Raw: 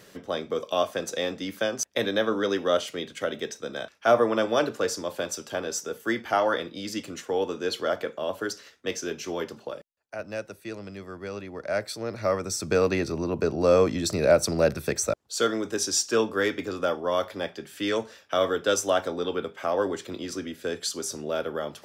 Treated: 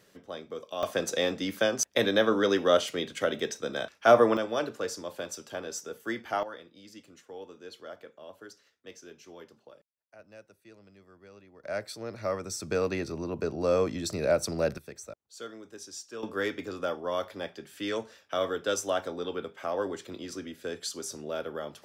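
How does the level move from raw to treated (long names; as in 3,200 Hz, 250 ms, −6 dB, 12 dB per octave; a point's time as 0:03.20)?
−10 dB
from 0:00.83 +1 dB
from 0:04.37 −6.5 dB
from 0:06.43 −17 dB
from 0:11.64 −6 dB
from 0:14.78 −17.5 dB
from 0:16.23 −5.5 dB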